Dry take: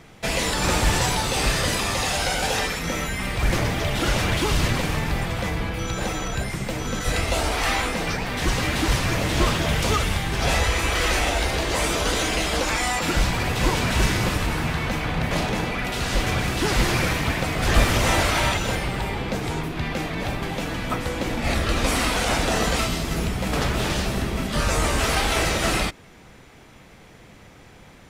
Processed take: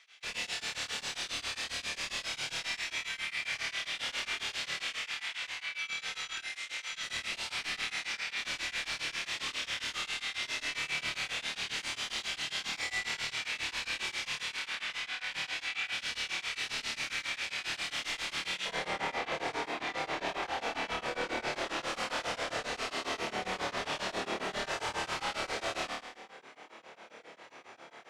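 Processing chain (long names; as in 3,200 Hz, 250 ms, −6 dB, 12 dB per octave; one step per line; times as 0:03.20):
Chebyshev high-pass filter 2,700 Hz, order 2, from 0:18.65 540 Hz
downward compressor, threshold −28 dBFS, peak gain reduction 8 dB
wave folding −29.5 dBFS
high-frequency loss of the air 91 metres
flutter between parallel walls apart 4.6 metres, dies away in 0.92 s
tremolo along a rectified sine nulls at 7.4 Hz
level −1.5 dB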